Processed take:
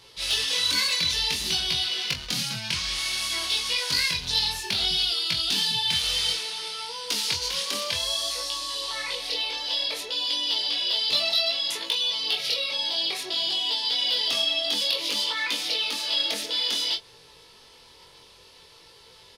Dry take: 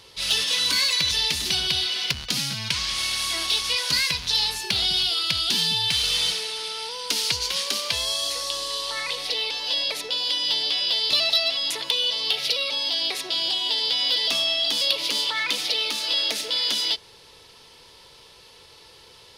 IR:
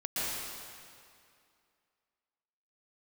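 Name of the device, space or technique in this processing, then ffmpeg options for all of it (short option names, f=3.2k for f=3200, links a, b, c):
double-tracked vocal: -filter_complex "[0:a]asplit=2[a][b];[b]adelay=24,volume=-7dB[c];[a][c]amix=inputs=2:normalize=0,flanger=delay=17:depth=7.1:speed=0.58"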